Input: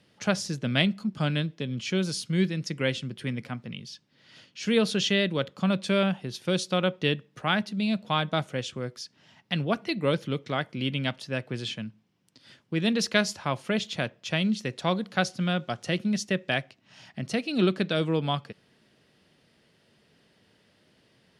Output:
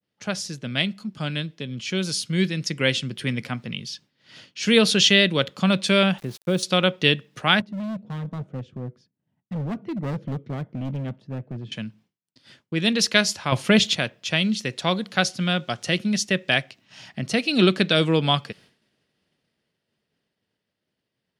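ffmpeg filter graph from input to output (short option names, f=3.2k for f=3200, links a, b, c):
-filter_complex "[0:a]asettb=1/sr,asplit=3[a][b][c];[a]atrim=end=6.184[d];[b]atrim=start=6.18:end=6.63,asetpts=PTS-STARTPTS,afade=t=in:d=0.004:c=qsin,afade=t=out:st=0.446:d=0.004:c=qsin,equalizer=f=4.3k:w=0.46:g=-14,aeval=exprs='val(0)*gte(abs(val(0)),0.00376)':c=same[e];[c]atrim=start=6.626[f];[d][e]acrossfade=d=0.004:c1=hsin:c2=qsin[g];[g][f]acrossfade=d=0.004:c1=qsin:c2=hsin,asettb=1/sr,asplit=3[h][i][j];[h]atrim=end=7.604[k];[i]atrim=start=7.6:end=11.72,asetpts=PTS-STARTPTS,afade=t=in:d=0.004:c=qsin,afade=t=out:st=4.116:d=0.004:c=qsin,bandpass=f=150:t=q:w=0.81,asoftclip=type=hard:threshold=-32dB[l];[j]atrim=start=11.716[m];[k][l]acrossfade=d=0.004:c1=hsin:c2=qsin[n];[n][m]acrossfade=d=0.004:c1=qsin:c2=hsin,asettb=1/sr,asplit=3[o][p][q];[o]atrim=end=13.524[r];[p]atrim=start=13.52:end=13.95,asetpts=PTS-STARTPTS,afade=t=in:d=0.004:c=qsin,afade=t=out:st=0.426:d=0.004:c=qsin,lowshelf=f=190:g=7.5,acontrast=34[s];[q]atrim=start=13.946[t];[r][s]acrossfade=d=0.004:c1=hsin:c2=qsin[u];[u][t]acrossfade=d=0.004:c1=qsin:c2=hsin,agate=range=-33dB:threshold=-53dB:ratio=3:detection=peak,dynaudnorm=f=130:g=31:m=11dB,adynamicequalizer=threshold=0.0178:dfrequency=1700:dqfactor=0.7:tfrequency=1700:tqfactor=0.7:attack=5:release=100:ratio=0.375:range=3:mode=boostabove:tftype=highshelf,volume=-3dB"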